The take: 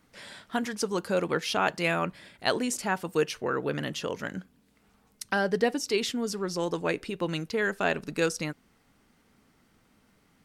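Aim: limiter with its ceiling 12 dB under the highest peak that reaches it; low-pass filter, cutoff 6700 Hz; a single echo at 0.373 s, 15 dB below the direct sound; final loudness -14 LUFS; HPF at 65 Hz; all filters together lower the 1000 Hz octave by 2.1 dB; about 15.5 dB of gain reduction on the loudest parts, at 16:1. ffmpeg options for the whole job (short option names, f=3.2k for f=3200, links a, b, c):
-af "highpass=65,lowpass=6.7k,equalizer=f=1k:t=o:g=-3,acompressor=threshold=-36dB:ratio=16,alimiter=level_in=9.5dB:limit=-24dB:level=0:latency=1,volume=-9.5dB,aecho=1:1:373:0.178,volume=30dB"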